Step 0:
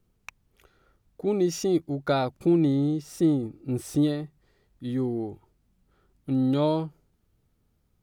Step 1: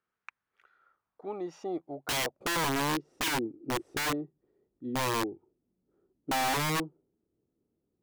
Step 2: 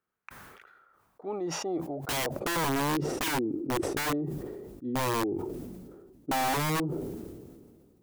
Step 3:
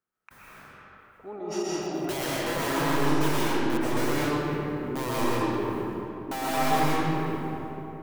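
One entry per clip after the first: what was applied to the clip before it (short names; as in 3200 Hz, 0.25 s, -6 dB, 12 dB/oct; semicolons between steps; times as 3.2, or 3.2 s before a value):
band-pass sweep 1500 Hz -> 350 Hz, 0.64–3.16; wrapped overs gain 27 dB; gain +2 dB
bell 3600 Hz -5 dB 3 oct; sustainer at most 30 dB/s; gain +2.5 dB
reverb RT60 3.2 s, pre-delay 85 ms, DRR -7.5 dB; gain -5 dB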